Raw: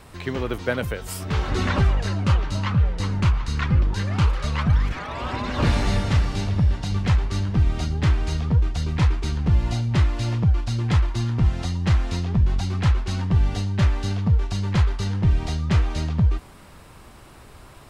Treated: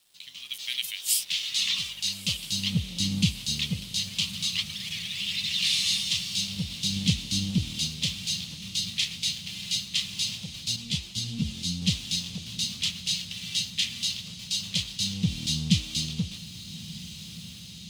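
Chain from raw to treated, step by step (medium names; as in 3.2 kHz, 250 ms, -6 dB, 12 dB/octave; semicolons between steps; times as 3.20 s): elliptic band-stop 180–3200 Hz, stop band 40 dB; dynamic bell 140 Hz, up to -4 dB, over -33 dBFS, Q 6.3; LFO high-pass sine 0.24 Hz 320–1800 Hz; crossover distortion -58.5 dBFS; level rider gain up to 11.5 dB; echo that smears into a reverb 1269 ms, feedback 74%, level -15 dB; 10.76–11.82 s: three-phase chorus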